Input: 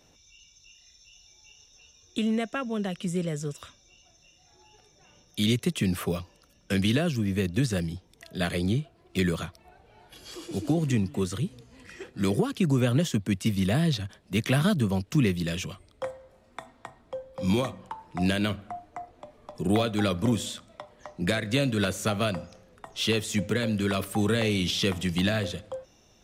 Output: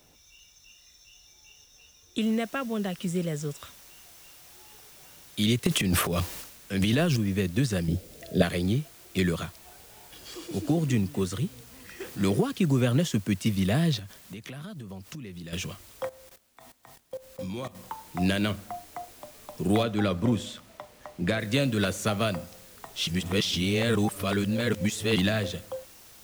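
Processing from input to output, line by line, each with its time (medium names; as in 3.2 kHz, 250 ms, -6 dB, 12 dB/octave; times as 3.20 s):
2.21 s: noise floor step -66 dB -52 dB
5.65–7.17 s: transient shaper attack -7 dB, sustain +12 dB
7.88–8.42 s: resonant low shelf 720 Hz +8.5 dB, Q 3
12.00–12.41 s: companding laws mixed up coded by mu
13.99–15.53 s: compression 10:1, threshold -37 dBFS
16.09–17.75 s: level held to a coarse grid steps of 17 dB
19.83–21.40 s: treble shelf 4.6 kHz -10 dB
23.07–25.17 s: reverse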